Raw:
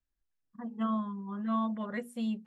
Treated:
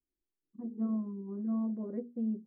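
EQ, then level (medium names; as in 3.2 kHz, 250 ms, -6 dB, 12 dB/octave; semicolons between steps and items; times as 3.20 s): resonant low-pass 350 Hz, resonance Q 4; bass shelf 190 Hz -10.5 dB; 0.0 dB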